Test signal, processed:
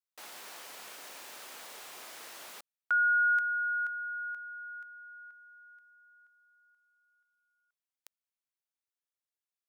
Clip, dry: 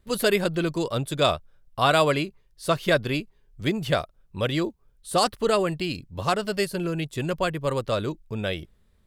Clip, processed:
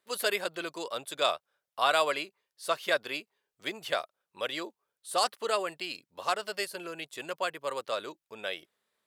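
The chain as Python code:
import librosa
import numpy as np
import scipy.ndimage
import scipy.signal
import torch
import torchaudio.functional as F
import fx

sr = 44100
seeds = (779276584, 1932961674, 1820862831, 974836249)

y = scipy.signal.sosfilt(scipy.signal.butter(2, 600.0, 'highpass', fs=sr, output='sos'), x)
y = y * librosa.db_to_amplitude(-4.0)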